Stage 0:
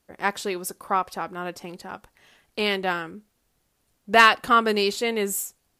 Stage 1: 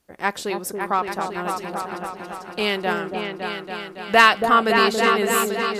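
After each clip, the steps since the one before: repeats that get brighter 0.28 s, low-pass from 750 Hz, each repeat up 2 oct, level -3 dB; gain +1.5 dB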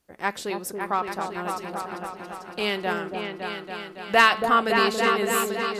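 de-hum 217.7 Hz, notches 23; gain -3.5 dB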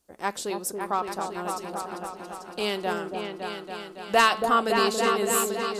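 graphic EQ 125/2000/8000 Hz -6/-7/+5 dB

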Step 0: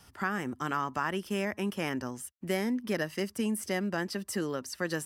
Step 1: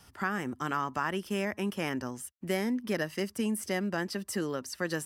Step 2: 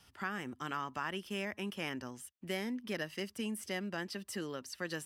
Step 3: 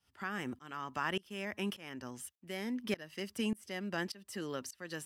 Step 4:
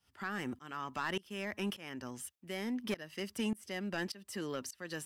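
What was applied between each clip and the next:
nothing audible
bell 3100 Hz +7 dB 1.2 oct; gain -8 dB
tremolo saw up 1.7 Hz, depth 95%; gain +5 dB
soft clip -28.5 dBFS, distortion -16 dB; gain +1.5 dB

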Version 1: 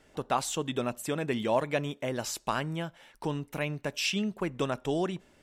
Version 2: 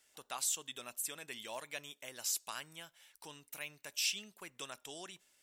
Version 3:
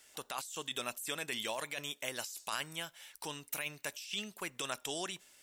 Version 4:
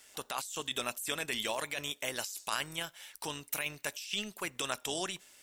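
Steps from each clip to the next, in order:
pre-emphasis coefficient 0.97; gain +1.5 dB
negative-ratio compressor -45 dBFS, ratio -1; gain +5.5 dB
AM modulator 200 Hz, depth 25%; gain +5 dB

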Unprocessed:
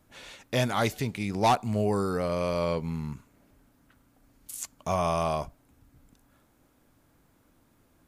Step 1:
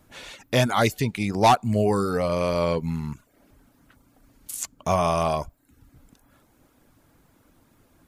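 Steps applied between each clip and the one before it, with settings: reverb removal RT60 0.51 s; gain +6 dB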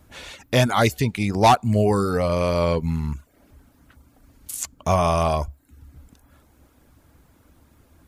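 bell 70 Hz +13 dB 0.55 oct; gain +2 dB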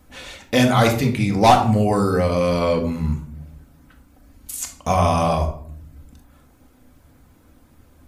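shoebox room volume 940 m³, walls furnished, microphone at 2 m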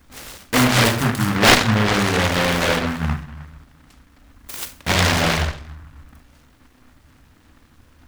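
noise-modulated delay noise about 1200 Hz, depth 0.34 ms

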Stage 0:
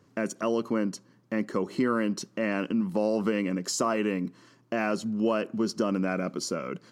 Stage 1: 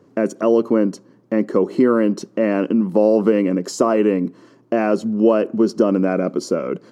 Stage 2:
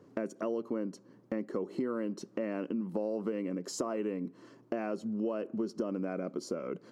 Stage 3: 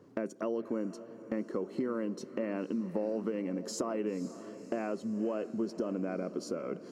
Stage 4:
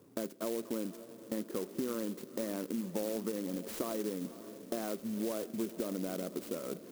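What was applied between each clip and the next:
bell 410 Hz +13.5 dB 2.6 oct
compressor 3:1, threshold -29 dBFS, peak gain reduction 14.5 dB; gain -6 dB
diffused feedback echo 0.521 s, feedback 55%, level -14 dB
clock jitter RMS 0.094 ms; gain -2.5 dB

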